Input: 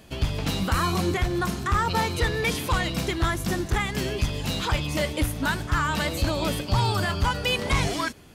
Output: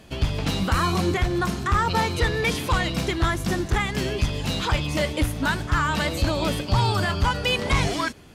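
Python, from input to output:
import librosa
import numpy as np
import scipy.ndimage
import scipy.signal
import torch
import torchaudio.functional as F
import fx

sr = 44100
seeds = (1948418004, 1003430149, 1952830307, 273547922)

y = fx.high_shelf(x, sr, hz=12000.0, db=-10.0)
y = y * 10.0 ** (2.0 / 20.0)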